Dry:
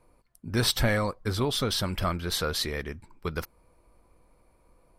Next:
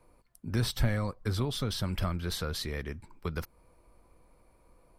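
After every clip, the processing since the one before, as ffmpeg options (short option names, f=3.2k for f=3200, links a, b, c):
-filter_complex "[0:a]acrossover=split=210[a][b];[b]acompressor=threshold=-37dB:ratio=2.5[c];[a][c]amix=inputs=2:normalize=0"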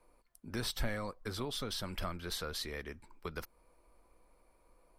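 -af "equalizer=f=110:t=o:w=1.8:g=-11.5,volume=-3dB"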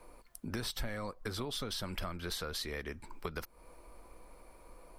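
-af "acompressor=threshold=-51dB:ratio=3,volume=11.5dB"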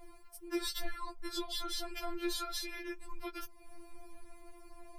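-af "afftfilt=real='re*4*eq(mod(b,16),0)':imag='im*4*eq(mod(b,16),0)':win_size=2048:overlap=0.75,volume=3dB"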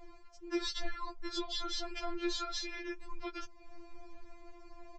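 -af "aresample=16000,aresample=44100,volume=1dB"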